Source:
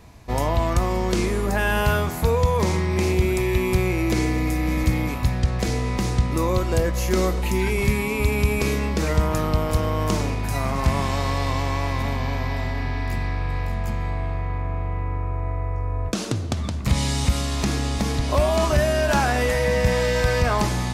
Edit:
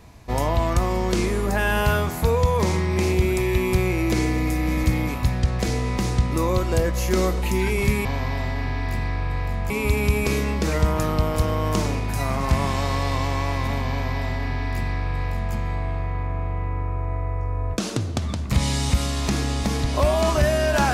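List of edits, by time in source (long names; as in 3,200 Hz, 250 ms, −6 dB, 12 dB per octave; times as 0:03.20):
0:12.24–0:13.89: duplicate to 0:08.05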